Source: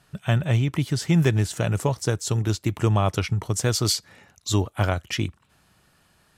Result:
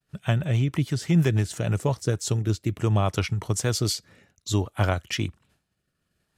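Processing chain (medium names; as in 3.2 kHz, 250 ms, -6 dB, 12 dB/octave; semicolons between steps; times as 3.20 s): rotary cabinet horn 6.3 Hz, later 0.6 Hz, at 1.56 s; expander -55 dBFS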